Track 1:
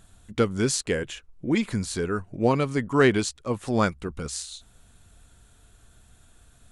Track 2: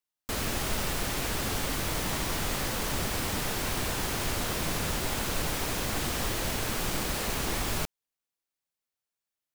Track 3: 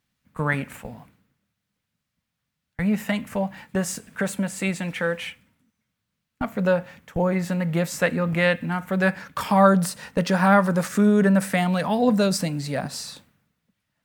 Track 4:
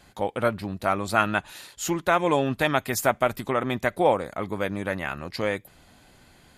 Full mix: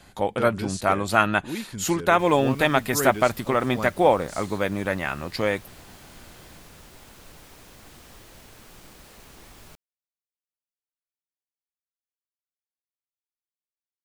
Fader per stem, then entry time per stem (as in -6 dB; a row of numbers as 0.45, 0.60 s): -9.0 dB, -17.5 dB, off, +2.5 dB; 0.00 s, 1.90 s, off, 0.00 s